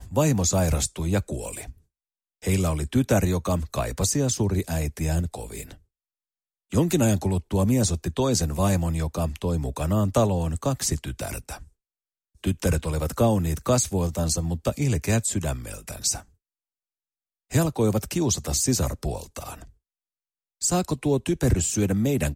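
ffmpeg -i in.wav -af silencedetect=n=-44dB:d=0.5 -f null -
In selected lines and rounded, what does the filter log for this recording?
silence_start: 1.72
silence_end: 2.42 | silence_duration: 0.70
silence_start: 5.75
silence_end: 6.72 | silence_duration: 0.97
silence_start: 11.67
silence_end: 12.44 | silence_duration: 0.76
silence_start: 16.23
silence_end: 17.51 | silence_duration: 1.28
silence_start: 19.70
silence_end: 20.61 | silence_duration: 0.91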